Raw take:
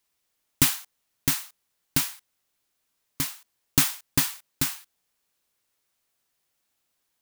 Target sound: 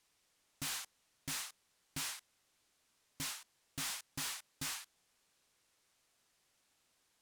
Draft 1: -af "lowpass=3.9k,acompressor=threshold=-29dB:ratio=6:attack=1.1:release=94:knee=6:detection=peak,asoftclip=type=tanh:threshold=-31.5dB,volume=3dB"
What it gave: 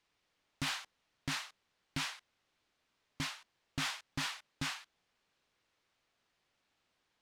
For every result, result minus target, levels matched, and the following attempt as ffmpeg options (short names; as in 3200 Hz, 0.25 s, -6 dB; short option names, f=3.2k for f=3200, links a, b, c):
8000 Hz band -7.0 dB; soft clip: distortion -5 dB
-af "lowpass=9.7k,acompressor=threshold=-29dB:ratio=6:attack=1.1:release=94:knee=6:detection=peak,asoftclip=type=tanh:threshold=-31.5dB,volume=3dB"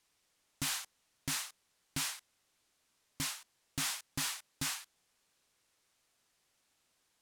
soft clip: distortion -5 dB
-af "lowpass=9.7k,acompressor=threshold=-29dB:ratio=6:attack=1.1:release=94:knee=6:detection=peak,asoftclip=type=tanh:threshold=-40dB,volume=3dB"